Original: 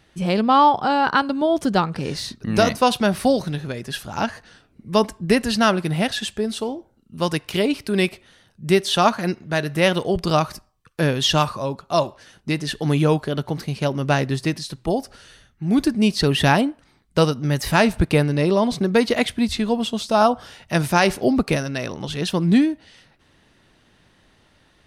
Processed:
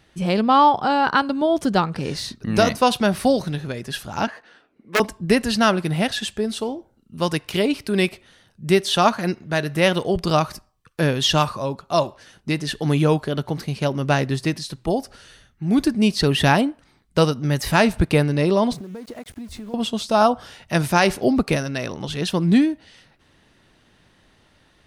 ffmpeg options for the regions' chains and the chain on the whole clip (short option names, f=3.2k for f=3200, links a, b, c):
-filter_complex "[0:a]asettb=1/sr,asplit=3[a][b][c];[a]atrim=end=4.274[d];[b]atrim=start=4.27:end=5,asetpts=PTS-STARTPTS,afade=t=in:d=0.004:c=qsin,afade=t=out:st=0.726:d=0.004:c=qsin,aeval=exprs='(mod(2.51*val(0)+1,2)-1)/2.51':c=same,acrossover=split=250 3400:gain=0.0708 1 0.251[e][f][g];[e][f][g]amix=inputs=3:normalize=0[h];[c]atrim=start=4.996[i];[d][h]acrossfade=d=0.004:c1=hsin:c2=qsin[j];[j][i]acrossfade=d=0.004:c1=qsin:c2=hsin,asettb=1/sr,asplit=3[k][l][m];[k]atrim=end=18.734[n];[l]atrim=start=18.73:end=19.74,asetpts=PTS-STARTPTS,afade=t=in:d=0.004:c=qsin,afade=t=out:st=1.006:d=0.004:c=qsin,equalizer=f=3.3k:t=o:w=2.2:g=-11.5,acompressor=threshold=-31dB:ratio=12:attack=3.2:release=140:knee=1:detection=peak,aeval=exprs='val(0)*gte(abs(val(0)),0.00501)':c=same[o];[m]atrim=start=19.736[p];[n][o]acrossfade=d=0.004:c1=hsin:c2=qsin[q];[q][p]acrossfade=d=0.004:c1=qsin:c2=hsin"